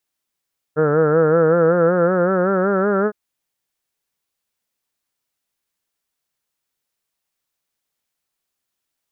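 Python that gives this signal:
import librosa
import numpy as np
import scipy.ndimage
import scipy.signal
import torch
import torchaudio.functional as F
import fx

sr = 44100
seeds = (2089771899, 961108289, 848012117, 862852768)

y = fx.vowel(sr, seeds[0], length_s=2.36, word='heard', hz=149.0, glide_st=5.5, vibrato_hz=5.3, vibrato_st=0.8)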